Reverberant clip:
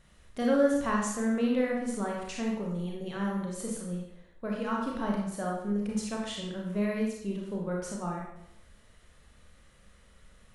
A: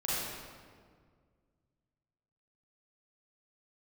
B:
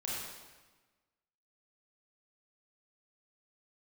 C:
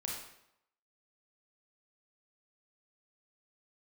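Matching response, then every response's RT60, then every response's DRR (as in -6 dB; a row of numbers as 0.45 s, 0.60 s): C; 1.9 s, 1.3 s, 0.80 s; -9.0 dB, -6.5 dB, -2.0 dB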